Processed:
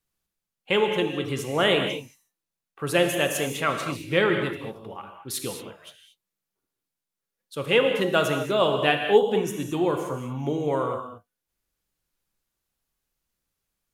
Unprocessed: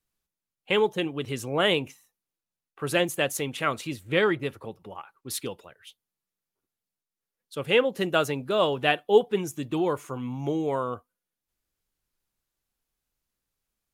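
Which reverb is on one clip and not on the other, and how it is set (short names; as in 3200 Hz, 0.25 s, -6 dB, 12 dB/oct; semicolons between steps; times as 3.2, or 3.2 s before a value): non-linear reverb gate 0.25 s flat, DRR 4 dB; gain +1 dB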